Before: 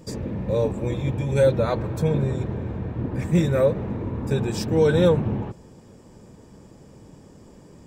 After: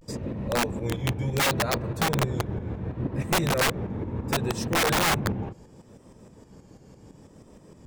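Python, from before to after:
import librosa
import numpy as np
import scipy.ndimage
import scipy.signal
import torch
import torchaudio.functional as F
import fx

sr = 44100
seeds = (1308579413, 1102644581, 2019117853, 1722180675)

y = fx.tremolo_shape(x, sr, shape='saw_up', hz=6.2, depth_pct=60)
y = fx.vibrato(y, sr, rate_hz=0.7, depth_cents=95.0)
y = (np.mod(10.0 ** (17.5 / 20.0) * y + 1.0, 2.0) - 1.0) / 10.0 ** (17.5 / 20.0)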